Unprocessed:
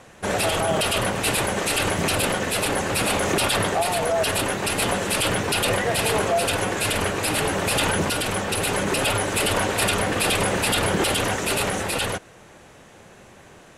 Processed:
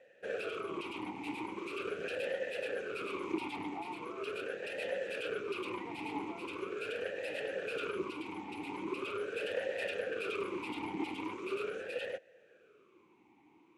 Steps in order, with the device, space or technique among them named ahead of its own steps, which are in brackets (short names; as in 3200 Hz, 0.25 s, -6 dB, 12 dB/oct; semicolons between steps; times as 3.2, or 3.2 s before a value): talk box (tube stage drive 13 dB, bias 0.75; vowel sweep e-u 0.41 Hz)